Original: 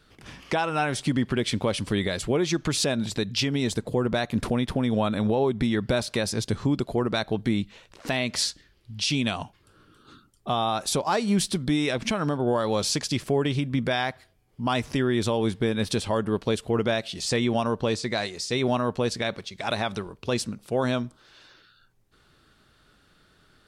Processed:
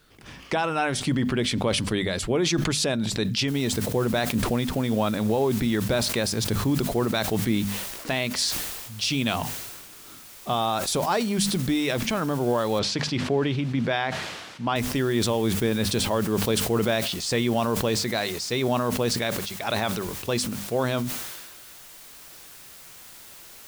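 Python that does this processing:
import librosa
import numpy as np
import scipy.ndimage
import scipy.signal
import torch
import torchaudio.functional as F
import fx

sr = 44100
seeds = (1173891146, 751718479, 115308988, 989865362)

y = fx.noise_floor_step(x, sr, seeds[0], at_s=3.48, before_db=-69, after_db=-46, tilt_db=0.0)
y = fx.bandpass_edges(y, sr, low_hz=100.0, high_hz=3700.0, at=(12.79, 14.76))
y = fx.hum_notches(y, sr, base_hz=50, count=5)
y = fx.sustainer(y, sr, db_per_s=37.0)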